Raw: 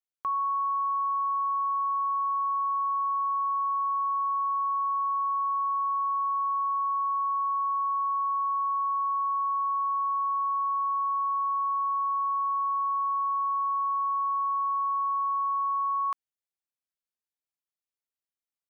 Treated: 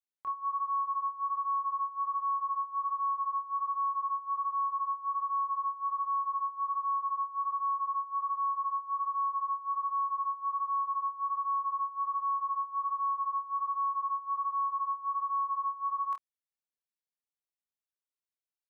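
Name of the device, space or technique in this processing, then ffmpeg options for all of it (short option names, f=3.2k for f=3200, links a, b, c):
double-tracked vocal: -filter_complex "[0:a]asplit=2[a][b];[b]adelay=28,volume=-6.5dB[c];[a][c]amix=inputs=2:normalize=0,flanger=delay=22.5:depth=3.2:speed=1.3,volume=-5dB"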